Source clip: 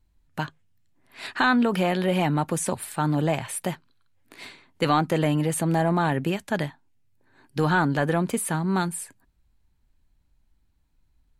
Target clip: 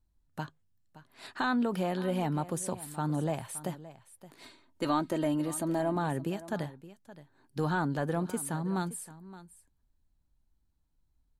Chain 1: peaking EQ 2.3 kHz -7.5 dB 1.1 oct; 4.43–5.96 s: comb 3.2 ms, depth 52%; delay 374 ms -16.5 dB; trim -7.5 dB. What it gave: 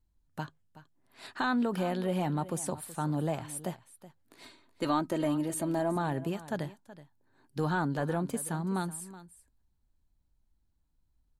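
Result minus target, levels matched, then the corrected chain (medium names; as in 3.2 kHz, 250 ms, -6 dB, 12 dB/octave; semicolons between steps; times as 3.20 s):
echo 196 ms early
peaking EQ 2.3 kHz -7.5 dB 1.1 oct; 4.43–5.96 s: comb 3.2 ms, depth 52%; delay 570 ms -16.5 dB; trim -7.5 dB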